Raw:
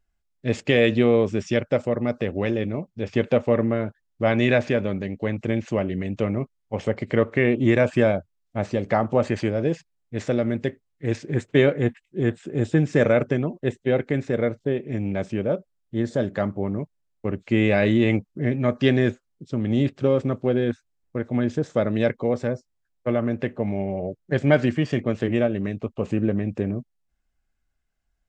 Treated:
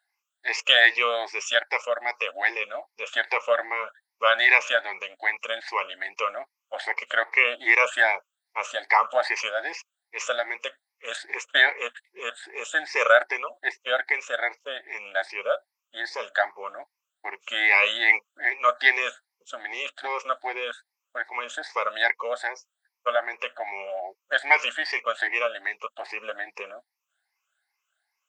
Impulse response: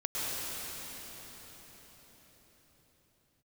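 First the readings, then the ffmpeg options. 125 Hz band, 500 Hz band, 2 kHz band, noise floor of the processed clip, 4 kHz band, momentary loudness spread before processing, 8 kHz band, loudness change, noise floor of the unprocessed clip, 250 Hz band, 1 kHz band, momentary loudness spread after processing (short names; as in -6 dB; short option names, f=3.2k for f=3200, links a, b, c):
under -40 dB, -7.0 dB, +9.5 dB, -85 dBFS, +9.5 dB, 11 LU, n/a, -0.5 dB, -74 dBFS, -27.0 dB, +6.5 dB, 16 LU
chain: -af "afftfilt=real='re*pow(10,19/40*sin(2*PI*(0.81*log(max(b,1)*sr/1024/100)/log(2)-(2.5)*(pts-256)/sr)))':imag='im*pow(10,19/40*sin(2*PI*(0.81*log(max(b,1)*sr/1024/100)/log(2)-(2.5)*(pts-256)/sr)))':win_size=1024:overlap=0.75,highpass=f=860:w=0.5412,highpass=f=860:w=1.3066,highshelf=f=5k:g=-4,volume=6dB"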